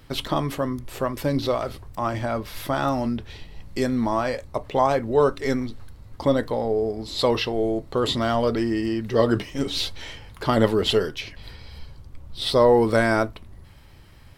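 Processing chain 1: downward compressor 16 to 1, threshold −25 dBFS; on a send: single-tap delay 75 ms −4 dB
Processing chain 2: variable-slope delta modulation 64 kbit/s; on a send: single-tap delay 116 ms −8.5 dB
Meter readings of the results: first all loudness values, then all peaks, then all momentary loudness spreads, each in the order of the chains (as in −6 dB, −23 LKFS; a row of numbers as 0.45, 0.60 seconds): −29.5, −23.5 LKFS; −14.0, −4.0 dBFS; 14, 13 LU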